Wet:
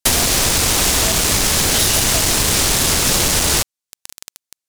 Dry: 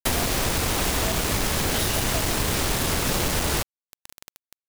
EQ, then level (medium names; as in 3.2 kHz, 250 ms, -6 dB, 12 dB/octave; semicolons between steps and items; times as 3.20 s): peaking EQ 7.1 kHz +9 dB 2.3 oct; +4.5 dB